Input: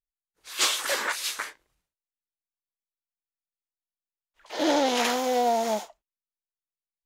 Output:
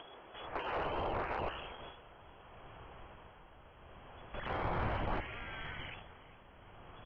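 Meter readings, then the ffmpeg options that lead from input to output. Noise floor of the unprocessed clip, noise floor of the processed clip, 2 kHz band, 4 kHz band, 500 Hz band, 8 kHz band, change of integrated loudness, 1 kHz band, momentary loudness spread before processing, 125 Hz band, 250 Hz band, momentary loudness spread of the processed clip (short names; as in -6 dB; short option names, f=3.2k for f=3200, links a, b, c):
under -85 dBFS, -58 dBFS, -11.0 dB, -19.5 dB, -13.0 dB, under -40 dB, -14.5 dB, -10.5 dB, 13 LU, n/a, -14.5 dB, 21 LU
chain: -filter_complex "[0:a]aeval=exprs='val(0)+0.5*0.0335*sgn(val(0))':c=same,afwtdn=0.0251,tremolo=f=0.7:d=0.54,asplit=2[a][b];[b]acompressor=threshold=-42dB:ratio=5,volume=2dB[c];[a][c]amix=inputs=2:normalize=0,highpass=47,afftfilt=real='re*lt(hypot(re,im),0.0398)':imag='im*lt(hypot(re,im),0.0398)':win_size=1024:overlap=0.75,lowpass=f=2.9k:t=q:w=0.5098,lowpass=f=2.9k:t=q:w=0.6013,lowpass=f=2.9k:t=q:w=0.9,lowpass=f=2.9k:t=q:w=2.563,afreqshift=-3400,firequalizer=gain_entry='entry(220,0);entry(370,8);entry(2000,-12)':delay=0.05:min_phase=1,aecho=1:1:406|812|1218:0.119|0.0452|0.0172,asoftclip=type=tanh:threshold=-37dB,asubboost=boost=10:cutoff=130,volume=9.5dB"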